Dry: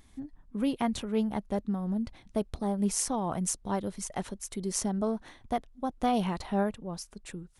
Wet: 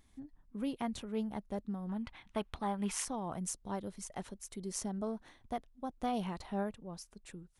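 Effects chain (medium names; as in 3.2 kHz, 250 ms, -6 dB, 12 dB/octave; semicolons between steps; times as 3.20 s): 1.89–3.05 s: high-order bell 1.7 kHz +12 dB 2.4 oct; trim -8 dB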